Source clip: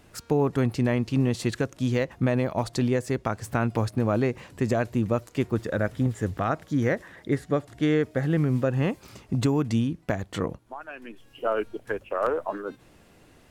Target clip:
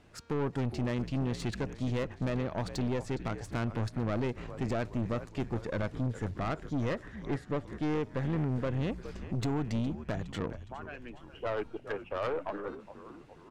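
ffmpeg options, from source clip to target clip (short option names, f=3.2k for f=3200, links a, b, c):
-filter_complex "[0:a]asplit=6[a][b][c][d][e][f];[b]adelay=413,afreqshift=-72,volume=-15dB[g];[c]adelay=826,afreqshift=-144,volume=-20.2dB[h];[d]adelay=1239,afreqshift=-216,volume=-25.4dB[i];[e]adelay=1652,afreqshift=-288,volume=-30.6dB[j];[f]adelay=2065,afreqshift=-360,volume=-35.8dB[k];[a][g][h][i][j][k]amix=inputs=6:normalize=0,adynamicsmooth=sensitivity=2.5:basefreq=7.1k,aeval=exprs='(tanh(15.8*val(0)+0.45)-tanh(0.45))/15.8':c=same,volume=-3dB"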